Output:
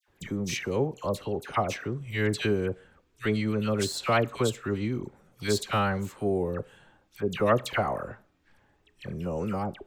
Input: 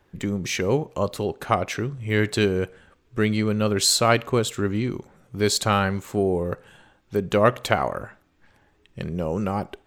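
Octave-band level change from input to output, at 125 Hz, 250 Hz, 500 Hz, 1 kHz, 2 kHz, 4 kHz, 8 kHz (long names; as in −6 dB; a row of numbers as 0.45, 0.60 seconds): −5.0, −5.0, −5.0, −5.0, −5.0, −9.0, −11.0 decibels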